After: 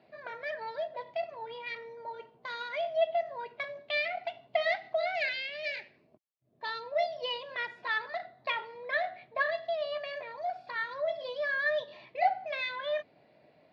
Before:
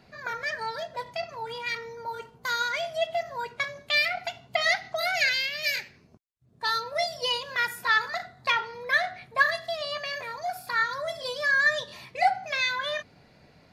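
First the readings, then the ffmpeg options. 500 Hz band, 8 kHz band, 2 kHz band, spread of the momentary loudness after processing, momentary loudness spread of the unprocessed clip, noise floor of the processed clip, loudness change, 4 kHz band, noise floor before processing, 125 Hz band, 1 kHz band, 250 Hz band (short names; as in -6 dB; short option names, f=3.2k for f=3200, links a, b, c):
+0.5 dB, under -25 dB, -8.5 dB, 10 LU, 11 LU, -65 dBFS, -6.5 dB, -10.0 dB, -58 dBFS, under -10 dB, -5.5 dB, n/a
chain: -af "aeval=exprs='0.355*(cos(1*acos(clip(val(0)/0.355,-1,1)))-cos(1*PI/2))+0.00794*(cos(8*acos(clip(val(0)/0.355,-1,1)))-cos(8*PI/2))':c=same,highpass=170,equalizer=f=190:t=q:w=4:g=-4,equalizer=f=330:t=q:w=4:g=4,equalizer=f=620:t=q:w=4:g=10,equalizer=f=1.4k:t=q:w=4:g=-6,lowpass=f=3.7k:w=0.5412,lowpass=f=3.7k:w=1.3066,volume=-7dB"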